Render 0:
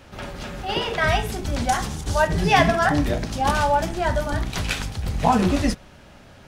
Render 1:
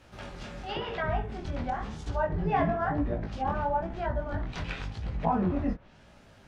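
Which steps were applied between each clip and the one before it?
chorus 0.97 Hz, delay 17 ms, depth 7.7 ms; low-pass that closes with the level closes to 1.3 kHz, closed at -21 dBFS; trim -5.5 dB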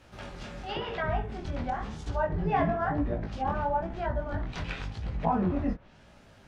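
no audible change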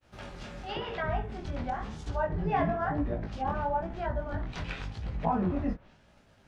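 expander -50 dBFS; trim -1.5 dB

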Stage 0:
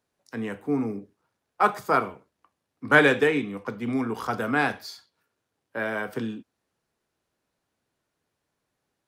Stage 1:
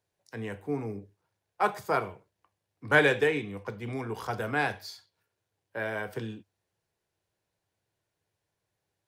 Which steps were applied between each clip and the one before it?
graphic EQ with 31 bands 100 Hz +10 dB, 250 Hz -12 dB, 1.25 kHz -7 dB; trim -3 dB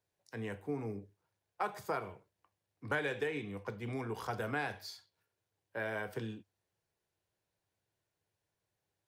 compression 5:1, threshold -28 dBFS, peak gain reduction 11.5 dB; trim -4 dB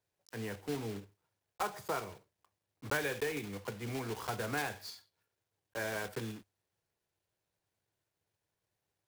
block-companded coder 3-bit

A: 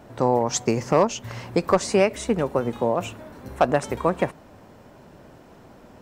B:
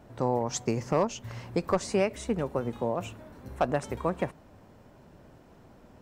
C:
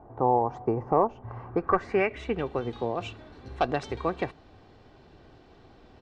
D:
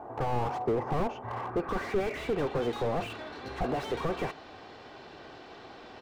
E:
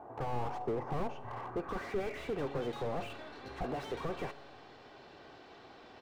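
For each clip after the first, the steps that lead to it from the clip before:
bass shelf 150 Hz +6.5 dB; trim -8 dB
comb 2.6 ms, depth 42%; low-pass sweep 920 Hz -> 4.1 kHz, 1.27–2.64 s
overdrive pedal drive 24 dB, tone 6.3 kHz, clips at -10 dBFS; slew-rate limiter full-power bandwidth 49 Hz; trim -6 dB
feedback comb 140 Hz, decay 1.6 s, mix 60%; trim +1 dB

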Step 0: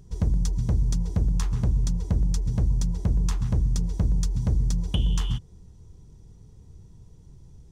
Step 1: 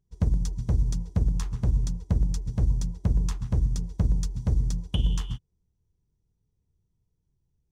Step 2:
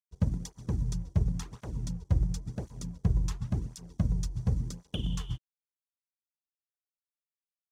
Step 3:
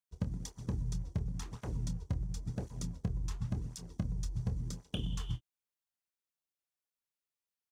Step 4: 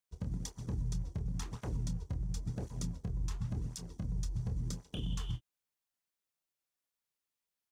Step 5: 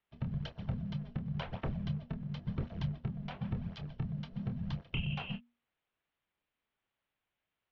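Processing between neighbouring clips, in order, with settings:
upward expansion 2.5:1, over -37 dBFS; trim +1.5 dB
crossover distortion -52.5 dBFS; cancelling through-zero flanger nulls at 0.93 Hz, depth 4.9 ms
compression 6:1, threshold -32 dBFS, peak gain reduction 12 dB; doubling 26 ms -11 dB
peak limiter -30 dBFS, peak gain reduction 8.5 dB; trim +2 dB
peaking EQ 82 Hz +11.5 dB 0.23 oct; mistuned SSB -320 Hz 170–3600 Hz; trim +8.5 dB

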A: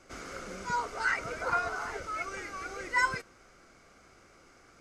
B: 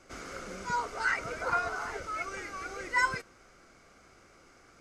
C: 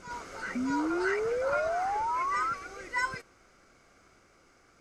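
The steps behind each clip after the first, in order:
no audible change
reverse echo 624 ms -6 dB; painted sound rise, 0.55–2.54 s, 240–1400 Hz -27 dBFS; trim -3.5 dB

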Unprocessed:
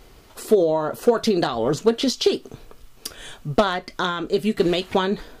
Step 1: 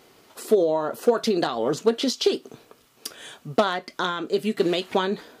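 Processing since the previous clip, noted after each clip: high-pass 190 Hz 12 dB/octave; trim -2 dB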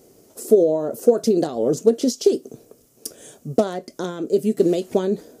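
high-order bell 1.9 kHz -16 dB 2.7 oct; trim +5 dB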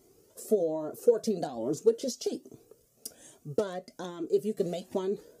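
Shepard-style flanger rising 1.2 Hz; trim -5 dB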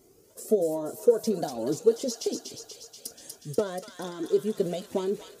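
feedback echo behind a high-pass 241 ms, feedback 69%, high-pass 1.6 kHz, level -4 dB; trim +2.5 dB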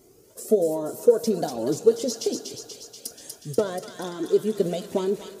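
reverberation RT60 2.3 s, pre-delay 4 ms, DRR 15.5 dB; trim +3.5 dB

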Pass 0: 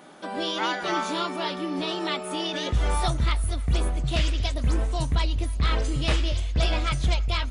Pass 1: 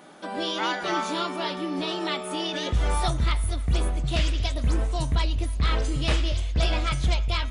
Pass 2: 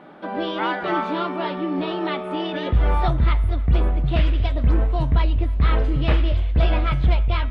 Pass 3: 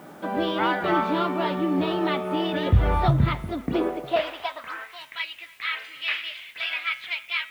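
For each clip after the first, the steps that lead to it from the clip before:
de-hum 128.9 Hz, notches 30
distance through air 450 m; trim +6 dB
high-pass sweep 87 Hz -> 2.2 kHz, 3.01–5.00 s; word length cut 10-bit, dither triangular

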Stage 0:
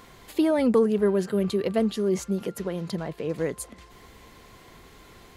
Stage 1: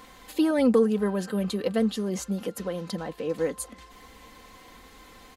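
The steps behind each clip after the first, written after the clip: bass shelf 440 Hz -3.5 dB; comb 3.9 ms, depth 60%; dynamic bell 2.2 kHz, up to -4 dB, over -54 dBFS, Q 3.8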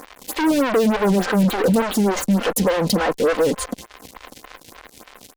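fuzz box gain 38 dB, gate -45 dBFS; lamp-driven phase shifter 3.4 Hz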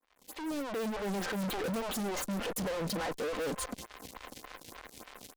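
fade-in on the opening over 1.33 s; saturation -27.5 dBFS, distortion -6 dB; trim -5 dB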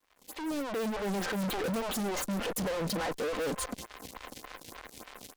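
crackle 360 per s -64 dBFS; trim +2 dB

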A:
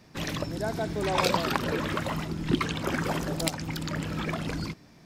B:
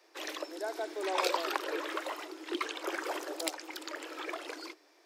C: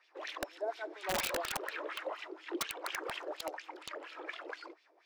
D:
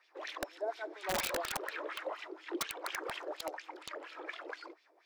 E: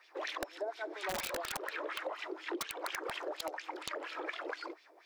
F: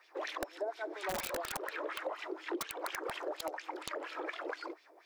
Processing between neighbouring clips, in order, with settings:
steep high-pass 310 Hz 96 dB/octave; trim -5 dB
wah-wah 4.2 Hz 460–3200 Hz, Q 2.5; integer overflow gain 31 dB; trim +4.5 dB
peaking EQ 2.8 kHz -2.5 dB 0.31 oct
compression, threshold -42 dBFS, peak gain reduction 11 dB; trim +6.5 dB
peaking EQ 3.4 kHz -4 dB 2.3 oct; trim +1.5 dB

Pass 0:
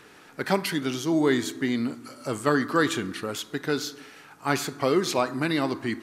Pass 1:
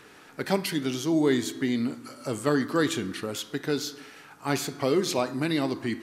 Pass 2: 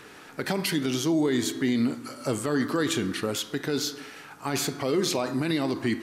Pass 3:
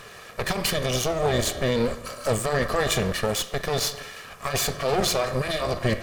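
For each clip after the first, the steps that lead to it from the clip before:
de-hum 175.5 Hz, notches 35; dynamic bell 1.3 kHz, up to -6 dB, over -39 dBFS, Q 0.99
peak limiter -20 dBFS, peak gain reduction 10.5 dB; trim +4 dB
comb filter that takes the minimum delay 1.7 ms; trim +5.5 dB

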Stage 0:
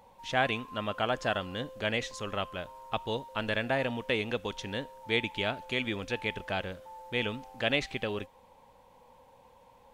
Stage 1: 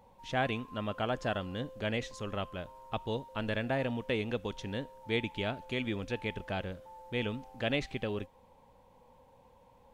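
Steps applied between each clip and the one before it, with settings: bass shelf 490 Hz +8 dB; trim -6 dB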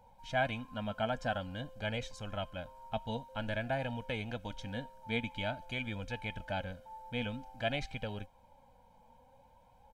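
comb 1.3 ms, depth 81%; flange 0.5 Hz, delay 2 ms, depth 2.7 ms, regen +60%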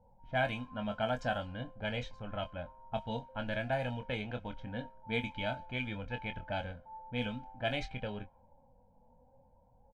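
doubling 24 ms -8 dB; level-controlled noise filter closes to 520 Hz, open at -29.5 dBFS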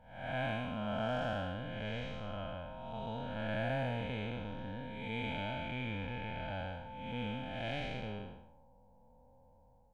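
spectral blur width 321 ms; trim +2.5 dB

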